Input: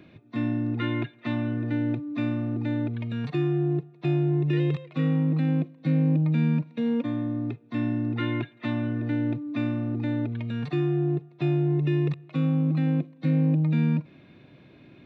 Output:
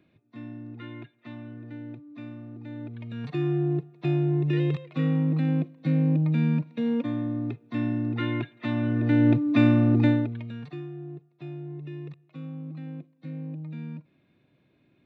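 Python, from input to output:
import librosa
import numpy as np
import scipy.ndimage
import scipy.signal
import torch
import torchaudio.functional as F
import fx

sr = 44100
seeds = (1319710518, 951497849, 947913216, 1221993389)

y = fx.gain(x, sr, db=fx.line((2.59, -13.0), (3.5, -0.5), (8.66, -0.5), (9.35, 8.5), (10.06, 8.5), (10.31, -2.5), (10.91, -14.0)))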